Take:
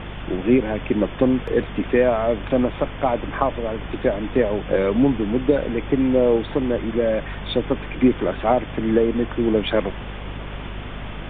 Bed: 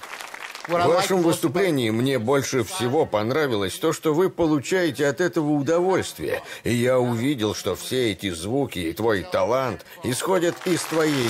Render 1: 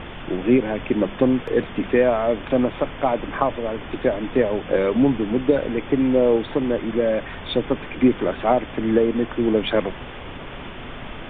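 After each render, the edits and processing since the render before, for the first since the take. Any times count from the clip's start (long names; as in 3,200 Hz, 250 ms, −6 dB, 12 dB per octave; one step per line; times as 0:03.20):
mains-hum notches 50/100/150/200 Hz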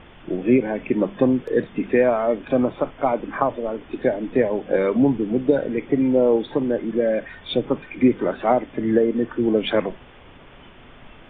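noise reduction from a noise print 11 dB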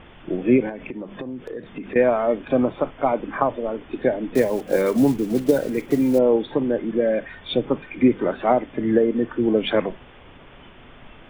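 0:00.69–0:01.96: downward compressor 10 to 1, threshold −28 dBFS
0:04.35–0:06.19: one scale factor per block 5 bits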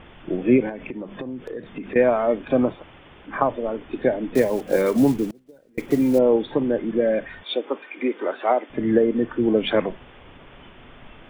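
0:02.78–0:03.29: fill with room tone, crossfade 0.10 s
0:05.27–0:05.78: gate with flip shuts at −23 dBFS, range −31 dB
0:07.43–0:08.70: Bessel high-pass filter 440 Hz, order 6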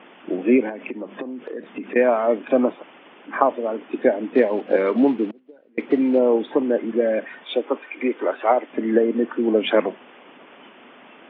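elliptic band-pass filter 230–3,000 Hz, stop band 50 dB
harmonic and percussive parts rebalanced percussive +4 dB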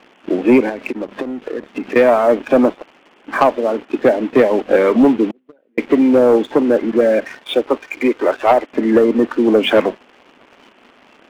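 leveller curve on the samples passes 2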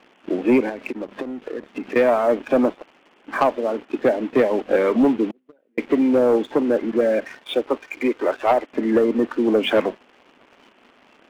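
level −5.5 dB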